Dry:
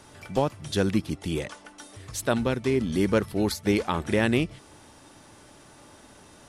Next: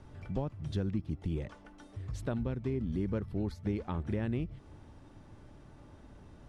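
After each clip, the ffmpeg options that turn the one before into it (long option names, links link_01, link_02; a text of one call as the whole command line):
ffmpeg -i in.wav -af "aemphasis=mode=reproduction:type=riaa,acompressor=threshold=-24dB:ratio=2.5,volume=-9dB" out.wav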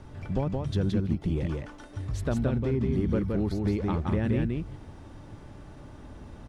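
ffmpeg -i in.wav -filter_complex "[0:a]asplit=2[link_01][link_02];[link_02]asoftclip=type=hard:threshold=-33dB,volume=-11.5dB[link_03];[link_01][link_03]amix=inputs=2:normalize=0,aecho=1:1:171:0.708,volume=4.5dB" out.wav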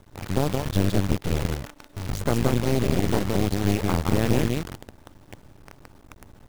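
ffmpeg -i in.wav -af "acrusher=bits=7:dc=4:mix=0:aa=0.000001,aeval=exprs='0.224*(cos(1*acos(clip(val(0)/0.224,-1,1)))-cos(1*PI/2))+0.112*(cos(4*acos(clip(val(0)/0.224,-1,1)))-cos(4*PI/2))':channel_layout=same" out.wav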